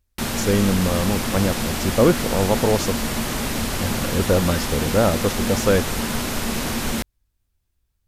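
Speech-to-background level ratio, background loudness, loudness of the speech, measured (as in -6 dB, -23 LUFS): 2.5 dB, -24.5 LUFS, -22.0 LUFS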